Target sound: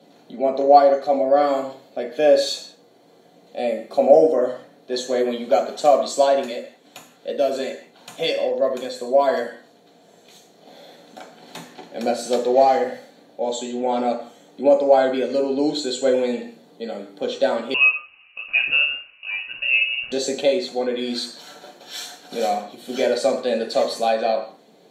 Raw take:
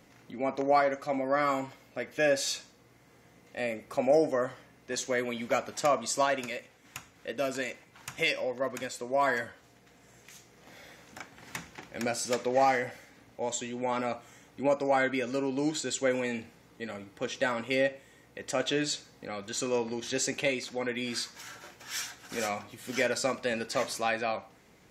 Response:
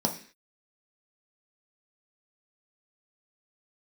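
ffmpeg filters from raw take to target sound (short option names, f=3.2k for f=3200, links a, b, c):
-filter_complex "[0:a]highpass=f=250:w=0.5412,highpass=f=250:w=1.3066[a];[1:a]atrim=start_sample=2205,atrim=end_sample=6615,asetrate=33075,aresample=44100[b];[a][b]afir=irnorm=-1:irlink=0,asettb=1/sr,asplit=3[c][d][e];[c]atrim=end=17.744[f];[d]atrim=start=17.74:end=20.12,asetpts=PTS-STARTPTS,afade=t=in:d=0.004:c=qsin,afade=t=out:st=2.376:d=0.004:c=qsin,lowpass=f=2.6k:t=q:w=0.5098,lowpass=f=2.6k:t=q:w=0.6013,lowpass=f=2.6k:t=q:w=0.9,lowpass=f=2.6k:t=q:w=2.563,afreqshift=-3100[g];[e]atrim=start=20.116[h];[f][g]acrossfade=d=0.004:c1=hsin:c2=qsin[i];[i][h]acrossfade=d=0.004:c1=qsin:c2=hsin,volume=-4dB"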